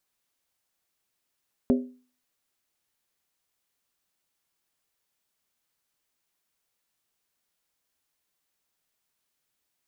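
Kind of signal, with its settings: skin hit, lowest mode 251 Hz, decay 0.40 s, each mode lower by 6 dB, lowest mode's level -15.5 dB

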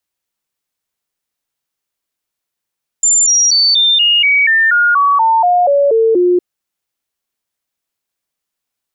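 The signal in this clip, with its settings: stepped sine 7.19 kHz down, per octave 3, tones 14, 0.24 s, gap 0.00 s -7.5 dBFS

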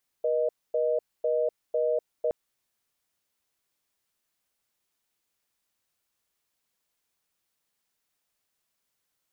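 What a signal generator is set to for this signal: call progress tone reorder tone, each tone -25.5 dBFS 2.07 s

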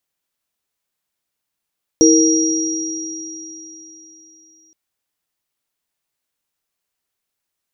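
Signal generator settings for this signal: sine partials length 2.72 s, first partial 323 Hz, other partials 461/5710 Hz, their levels -4/-3 dB, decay 3.21 s, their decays 1.64/4.14 s, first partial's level -8.5 dB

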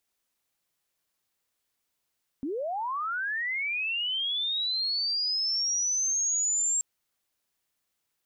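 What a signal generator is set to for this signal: sweep linear 250 Hz -> 7.5 kHz -29 dBFS -> -23.5 dBFS 4.38 s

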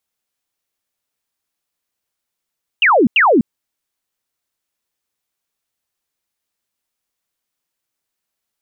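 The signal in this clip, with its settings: burst of laser zaps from 3 kHz, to 200 Hz, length 0.25 s sine, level -8 dB, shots 2, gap 0.09 s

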